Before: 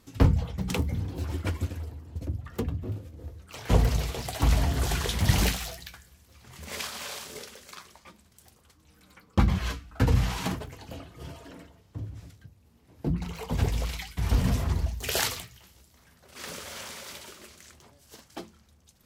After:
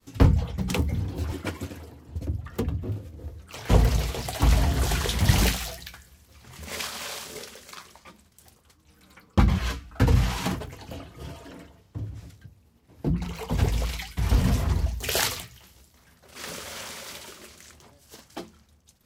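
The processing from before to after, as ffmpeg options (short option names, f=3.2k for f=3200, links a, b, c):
-filter_complex "[0:a]asettb=1/sr,asplit=3[a][b][c];[a]atrim=end=1.334[d];[b]atrim=start=1.33:end=2.09,asetpts=PTS-STARTPTS,afade=t=in:d=0.004:c=qsin,afade=t=out:st=0.756:d=0.004:c=qsin,highpass=150[e];[c]atrim=start=2.086[f];[d][e]acrossfade=d=0.004:c1=hsin:c2=qsin[g];[g][f]acrossfade=d=0.004:c1=qsin:c2=hsin,agate=range=-33dB:threshold=-57dB:ratio=3:detection=peak,volume=2.5dB"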